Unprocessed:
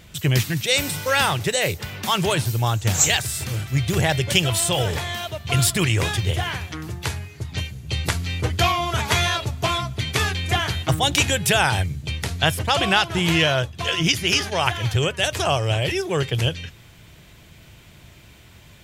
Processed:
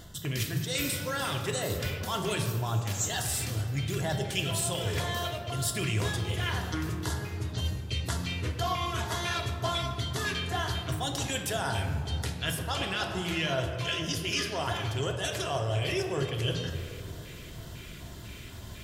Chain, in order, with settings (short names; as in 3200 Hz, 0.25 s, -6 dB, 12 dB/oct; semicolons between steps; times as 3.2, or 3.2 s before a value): reverse; compressor 6:1, threshold -32 dBFS, peak gain reduction 18 dB; reverse; LFO notch square 2 Hz 810–2400 Hz; reverb RT60 2.8 s, pre-delay 3 ms, DRR 1.5 dB; gain +2.5 dB